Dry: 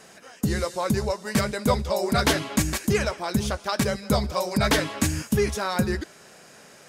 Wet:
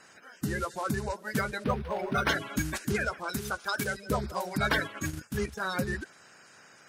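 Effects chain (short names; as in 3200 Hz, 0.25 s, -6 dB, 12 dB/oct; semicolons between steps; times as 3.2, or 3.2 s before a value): bin magnitudes rounded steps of 30 dB; 3.29–3.97 tilt +1.5 dB/oct; 4.83–5.61 transient shaper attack -6 dB, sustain -10 dB; bell 1500 Hz +7.5 dB 0.47 oct; 1.64–2.29 decimation joined by straight lines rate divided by 6×; gain -7 dB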